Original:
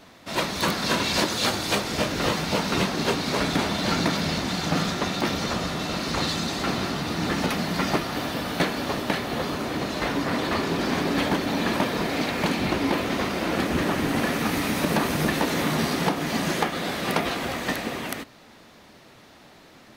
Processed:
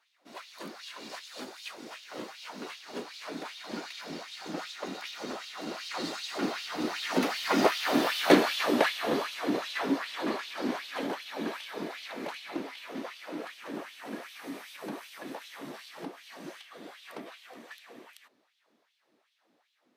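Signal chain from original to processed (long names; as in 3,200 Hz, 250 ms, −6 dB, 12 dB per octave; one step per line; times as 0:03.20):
source passing by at 0:08.24, 13 m/s, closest 8.4 metres
auto-filter high-pass sine 2.6 Hz 260–3,300 Hz
low-shelf EQ 400 Hz +4.5 dB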